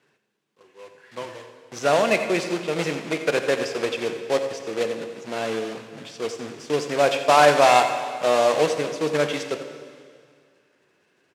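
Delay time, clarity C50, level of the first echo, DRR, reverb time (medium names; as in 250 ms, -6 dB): 88 ms, 7.5 dB, -12.0 dB, 6.5 dB, 2.1 s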